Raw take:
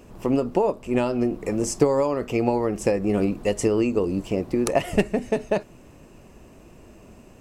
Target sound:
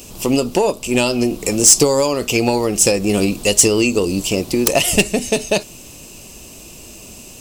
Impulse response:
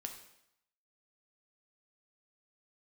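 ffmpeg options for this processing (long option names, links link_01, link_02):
-af "aexciter=amount=7.8:drive=3.3:freq=2600,acontrast=75,volume=-1dB"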